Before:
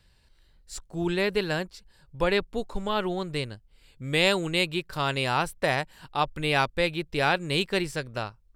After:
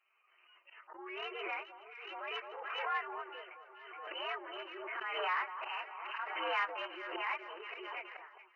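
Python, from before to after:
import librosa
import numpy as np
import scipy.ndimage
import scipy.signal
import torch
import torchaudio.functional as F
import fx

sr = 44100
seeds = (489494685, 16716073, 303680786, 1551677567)

p1 = fx.partial_stretch(x, sr, pct=119)
p2 = fx.noise_reduce_blind(p1, sr, reduce_db=21)
p3 = fx.auto_swell(p2, sr, attack_ms=209.0)
p4 = fx.level_steps(p3, sr, step_db=21)
p5 = p3 + F.gain(torch.from_numpy(p4), 3.0).numpy()
p6 = 10.0 ** (-19.0 / 20.0) * (np.abs((p5 / 10.0 ** (-19.0 / 20.0) + 3.0) % 4.0 - 2.0) - 1.0)
p7 = fx.brickwall_bandpass(p6, sr, low_hz=330.0, high_hz=3100.0)
p8 = 10.0 ** (-17.0 / 20.0) * np.tanh(p7 / 10.0 ** (-17.0 / 20.0))
p9 = fx.low_shelf_res(p8, sr, hz=740.0, db=-12.0, q=1.5)
p10 = p9 + fx.echo_alternate(p9, sr, ms=212, hz=1300.0, feedback_pct=67, wet_db=-11, dry=0)
p11 = fx.pre_swell(p10, sr, db_per_s=32.0)
y = F.gain(torch.from_numpy(p11), -6.5).numpy()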